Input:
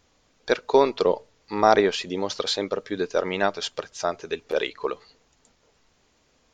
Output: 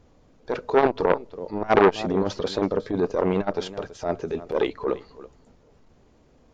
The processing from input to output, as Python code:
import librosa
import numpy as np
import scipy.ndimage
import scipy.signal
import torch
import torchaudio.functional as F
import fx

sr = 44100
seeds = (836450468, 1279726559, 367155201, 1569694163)

y = fx.transient(x, sr, attack_db=-11, sustain_db=1)
y = fx.tilt_shelf(y, sr, db=9.5, hz=1100.0)
y = y + 10.0 ** (-18.5 / 20.0) * np.pad(y, (int(329 * sr / 1000.0), 0))[:len(y)]
y = fx.transformer_sat(y, sr, knee_hz=1300.0)
y = F.gain(torch.from_numpy(y), 2.5).numpy()